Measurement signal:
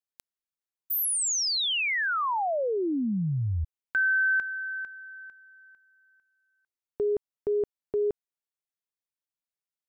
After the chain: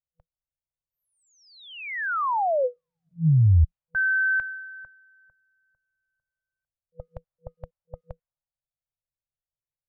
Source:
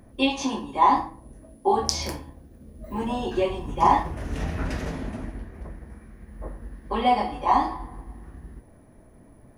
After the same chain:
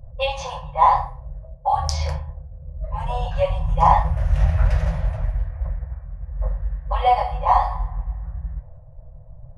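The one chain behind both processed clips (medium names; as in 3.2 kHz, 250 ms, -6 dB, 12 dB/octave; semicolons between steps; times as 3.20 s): tilt EQ -2.5 dB/octave; level-controlled noise filter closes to 510 Hz, open at -18.5 dBFS; FFT band-reject 170–490 Hz; trim +3 dB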